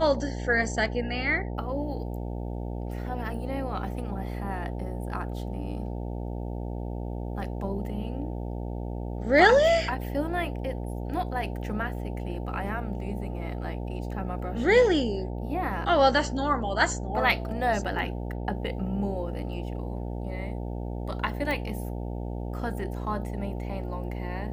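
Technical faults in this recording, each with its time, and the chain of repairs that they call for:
buzz 60 Hz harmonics 15 -33 dBFS
21.51 pop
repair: de-click; de-hum 60 Hz, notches 15

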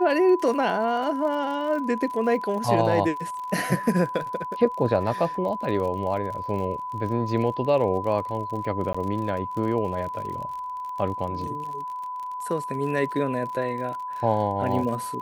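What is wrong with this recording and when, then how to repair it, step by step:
crackle 51/s -33 dBFS
tone 1000 Hz -30 dBFS
8.93–8.95 gap 15 ms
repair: de-click; notch 1000 Hz, Q 30; interpolate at 8.93, 15 ms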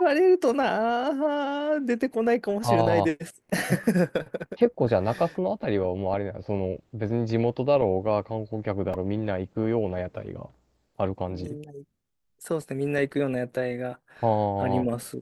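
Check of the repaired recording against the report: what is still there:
none

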